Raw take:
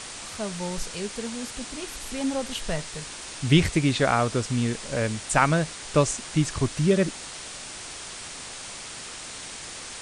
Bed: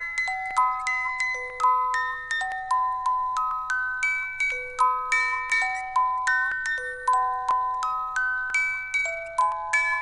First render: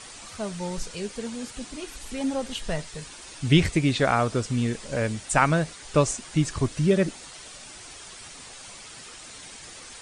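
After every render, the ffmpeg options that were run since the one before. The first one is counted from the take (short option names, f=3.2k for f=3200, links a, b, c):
-af "afftdn=nr=8:nf=-39"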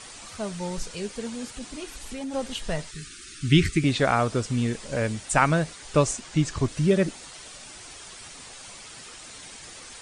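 -filter_complex "[0:a]asettb=1/sr,asplit=3[a][b][c];[a]atrim=end=1.574[d];[b]atrim=start=1.57:end=2.34,asetpts=PTS-STARTPTS,afade=t=in:d=0.004:c=qsin,afade=t=out:st=0.766:d=0.004:c=qsin,acompressor=threshold=-30dB:ratio=6:attack=3.2:release=140:knee=1:detection=peak[e];[c]atrim=start=2.336[f];[d][e]acrossfade=d=0.004:c1=hsin:c2=qsin[g];[g][f]acrossfade=d=0.004:c1=qsin:c2=hsin,asettb=1/sr,asplit=3[h][i][j];[h]atrim=end=2.914[k];[i]atrim=start=2.91:end=3.84,asetpts=PTS-STARTPTS,afade=t=in:d=0.004:c=qsin,afade=t=out:st=0.926:d=0.004:c=qsin,asuperstop=centerf=700:order=20:qfactor=0.92[l];[j]atrim=start=3.836[m];[k][l]acrossfade=d=0.004:c1=hsin:c2=qsin[n];[n][m]acrossfade=d=0.004:c1=qsin:c2=hsin,asettb=1/sr,asplit=3[o][p][q];[o]atrim=end=6.204[r];[p]atrim=start=6.2:end=6.68,asetpts=PTS-STARTPTS,afade=t=in:d=0.004:c=qsin,afade=t=out:st=0.476:d=0.004:c=qsin,lowpass=f=8.4k:w=0.5412,lowpass=f=8.4k:w=1.3066[s];[q]atrim=start=6.676[t];[r][s]acrossfade=d=0.004:c1=hsin:c2=qsin[u];[u][t]acrossfade=d=0.004:c1=qsin:c2=hsin"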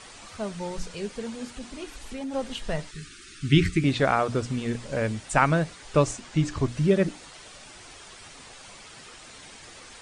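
-af "highshelf=f=5.4k:g=-8.5,bandreject=f=60:t=h:w=6,bandreject=f=120:t=h:w=6,bandreject=f=180:t=h:w=6,bandreject=f=240:t=h:w=6,bandreject=f=300:t=h:w=6"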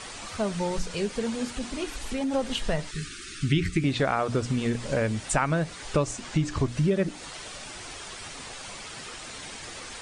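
-filter_complex "[0:a]asplit=2[a][b];[b]alimiter=limit=-14dB:level=0:latency=1:release=291,volume=0dB[c];[a][c]amix=inputs=2:normalize=0,acompressor=threshold=-24dB:ratio=2.5"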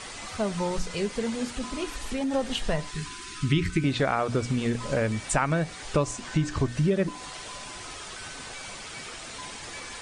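-filter_complex "[1:a]volume=-23dB[a];[0:a][a]amix=inputs=2:normalize=0"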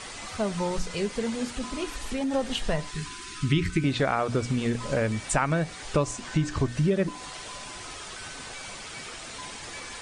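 -af anull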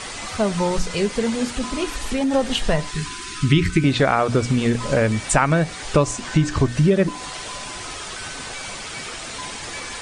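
-af "volume=7.5dB"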